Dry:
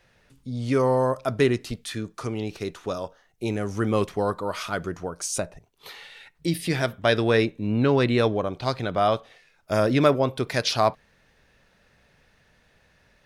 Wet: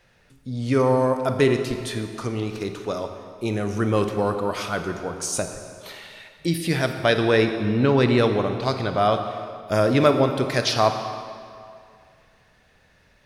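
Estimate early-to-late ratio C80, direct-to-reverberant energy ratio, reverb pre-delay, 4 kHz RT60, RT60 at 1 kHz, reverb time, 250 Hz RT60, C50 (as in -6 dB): 8.0 dB, 6.5 dB, 29 ms, 1.8 s, 2.4 s, 2.3 s, 2.2 s, 7.0 dB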